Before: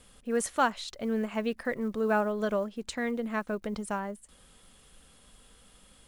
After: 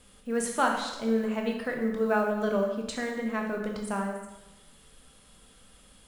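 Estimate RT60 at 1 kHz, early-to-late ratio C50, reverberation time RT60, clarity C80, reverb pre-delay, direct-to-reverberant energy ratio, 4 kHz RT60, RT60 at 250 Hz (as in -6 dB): 1.0 s, 4.5 dB, 1.0 s, 6.5 dB, 7 ms, 1.0 dB, 0.95 s, 1.0 s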